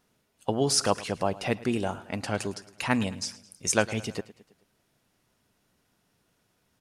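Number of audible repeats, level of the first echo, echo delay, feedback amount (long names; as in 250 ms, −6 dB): 3, −19.0 dB, 108 ms, 54%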